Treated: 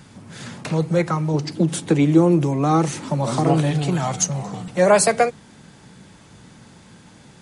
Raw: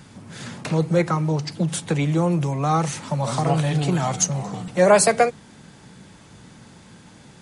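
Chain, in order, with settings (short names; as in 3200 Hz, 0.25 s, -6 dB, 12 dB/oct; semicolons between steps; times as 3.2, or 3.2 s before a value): 1.34–3.71 bell 320 Hz +11 dB 0.87 oct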